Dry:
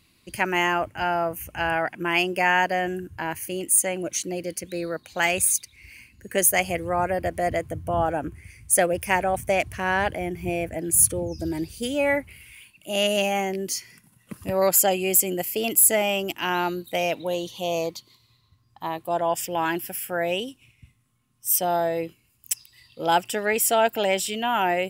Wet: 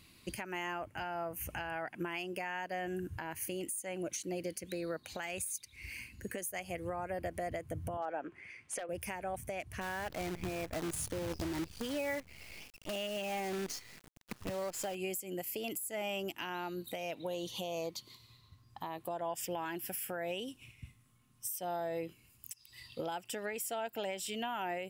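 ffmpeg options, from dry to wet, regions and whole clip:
ffmpeg -i in.wav -filter_complex "[0:a]asettb=1/sr,asplit=3[link_01][link_02][link_03];[link_01]atrim=end=7.974[link_04];[link_02]atrim=start=7.97:end=8.89,asetpts=PTS-STARTPTS,afade=type=in:duration=0.004:curve=qsin,afade=type=out:start_time=0.916:duration=0.004:curve=qsin,highpass=410,lowpass=3100,aeval=exprs='0.2*(abs(mod(val(0)/0.2+3,4)-2)-1)':channel_layout=same[link_05];[link_03]atrim=start=8.886[link_06];[link_04][link_05]acrossfade=duration=0.004:curve1=hsin:curve2=qsin[link_07];[link_07][link_06]acrossfade=duration=0.004:curve1=qsin:curve2=hsin,asettb=1/sr,asplit=3[link_08][link_09][link_10];[link_08]atrim=end=9.814[link_11];[link_09]atrim=start=9.81:end=14.95,asetpts=PTS-STARTPTS,afade=type=in:duration=0.004:curve=qsin,afade=type=out:start_time=5.136:duration=0.004:curve=qsin,lowpass=5500,acrusher=bits=6:dc=4:mix=0:aa=0.000001[link_12];[link_10]atrim=start=14.946[link_13];[link_11][link_12]acrossfade=duration=0.004:curve1=hsin:curve2=qsin[link_14];[link_14][link_13]acrossfade=duration=0.004:curve1=qsin:curve2=hsin,acompressor=threshold=-34dB:ratio=16,alimiter=level_in=5dB:limit=-24dB:level=0:latency=1:release=192,volume=-5dB,volume=1dB" out.wav

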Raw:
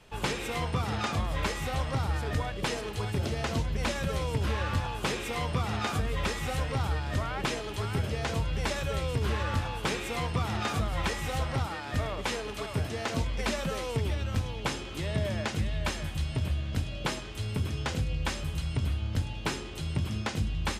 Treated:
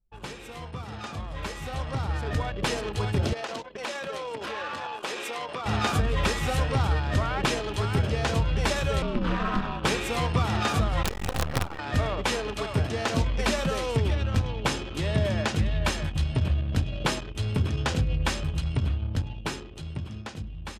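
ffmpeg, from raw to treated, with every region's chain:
ffmpeg -i in.wav -filter_complex "[0:a]asettb=1/sr,asplit=3[link_01][link_02][link_03];[link_01]atrim=end=3.334[link_04];[link_02]atrim=start=3.33:end=5.66,asetpts=PTS-STARTPTS,afade=type=in:duration=0.004:curve=qsin,afade=type=out:start_time=2.326:duration=0.004:curve=qsin,highpass=410,acompressor=threshold=-35dB:ratio=3:attack=3.2:release=140:knee=1:detection=peak[link_05];[link_03]atrim=start=5.656[link_06];[link_04][link_05]acrossfade=duration=0.004:curve1=hsin:curve2=qsin[link_07];[link_07][link_06]acrossfade=duration=0.004:curve1=qsin:curve2=hsin,asettb=1/sr,asplit=3[link_08][link_09][link_10];[link_08]atrim=end=9.024[link_11];[link_09]atrim=start=9.02:end=9.84,asetpts=PTS-STARTPTS,afade=type=in:duration=0.004:curve=qsin,afade=type=out:start_time=0.816:duration=0.004:curve=qsin,acrossover=split=4600[link_12][link_13];[link_13]acompressor=threshold=-57dB:ratio=4:attack=1:release=60[link_14];[link_12][link_14]amix=inputs=2:normalize=0,equalizer=frequency=1200:width_type=o:width=0.37:gain=6,aeval=exprs='val(0)*sin(2*PI*110*n/s)':channel_layout=same[link_15];[link_10]atrim=start=9.836[link_16];[link_11][link_15]acrossfade=duration=0.004:curve1=hsin:curve2=qsin[link_17];[link_17][link_16]acrossfade=duration=0.004:curve1=qsin:curve2=hsin,asettb=1/sr,asplit=3[link_18][link_19][link_20];[link_18]atrim=end=11.034[link_21];[link_19]atrim=start=11.03:end=11.79,asetpts=PTS-STARTPTS,afade=type=in:duration=0.004:curve=qsin,afade=type=out:start_time=0.756:duration=0.004:curve=qsin,equalizer=frequency=71:width_type=o:width=1.4:gain=3.5,acrossover=split=280|600|1500[link_22][link_23][link_24][link_25];[link_22]acompressor=threshold=-29dB:ratio=3[link_26];[link_23]acompressor=threshold=-40dB:ratio=3[link_27];[link_24]acompressor=threshold=-43dB:ratio=3[link_28];[link_25]acompressor=threshold=-42dB:ratio=3[link_29];[link_26][link_27][link_28][link_29]amix=inputs=4:normalize=0,acrusher=bits=5:dc=4:mix=0:aa=0.000001[link_30];[link_20]atrim=start=11.786[link_31];[link_21][link_30]acrossfade=duration=0.004:curve1=hsin:curve2=qsin[link_32];[link_32][link_31]acrossfade=duration=0.004:curve1=qsin:curve2=hsin,bandreject=frequency=2100:width=20,anlmdn=0.398,dynaudnorm=framelen=330:gausssize=13:maxgain=14dB,volume=-8dB" out.wav

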